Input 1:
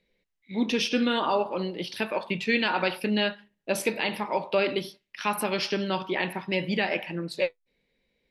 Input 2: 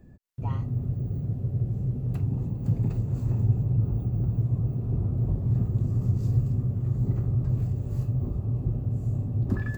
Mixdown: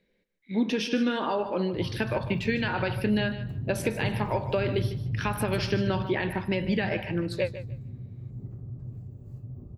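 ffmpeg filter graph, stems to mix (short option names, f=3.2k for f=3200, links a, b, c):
-filter_complex "[0:a]equalizer=f=1.6k:t=o:w=0.33:g=7.5,acompressor=threshold=-25dB:ratio=6,volume=-2.5dB,asplit=2[a][b];[b]volume=-13dB[c];[1:a]adelay=1350,volume=-12.5dB,afade=t=out:st=5.99:d=0.35:silence=0.446684[d];[c]aecho=0:1:150|300|450:1|0.18|0.0324[e];[a][d][e]amix=inputs=3:normalize=0,equalizer=f=220:w=0.33:g=7"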